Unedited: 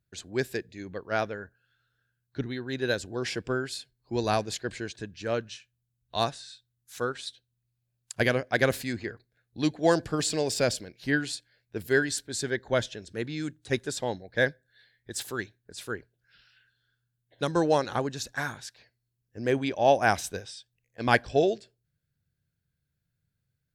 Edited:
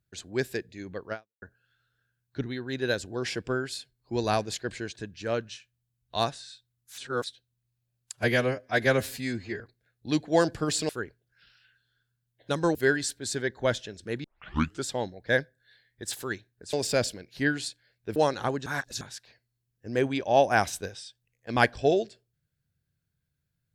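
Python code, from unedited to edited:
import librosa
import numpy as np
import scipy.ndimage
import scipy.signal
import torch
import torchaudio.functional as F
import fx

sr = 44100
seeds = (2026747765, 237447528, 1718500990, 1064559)

y = fx.edit(x, sr, fx.fade_out_span(start_s=1.12, length_s=0.3, curve='exp'),
    fx.reverse_span(start_s=6.98, length_s=0.26),
    fx.stretch_span(start_s=8.13, length_s=0.98, factor=1.5),
    fx.swap(start_s=10.4, length_s=1.43, other_s=15.81, other_length_s=1.86),
    fx.tape_start(start_s=13.32, length_s=0.61),
    fx.reverse_span(start_s=18.17, length_s=0.35), tone=tone)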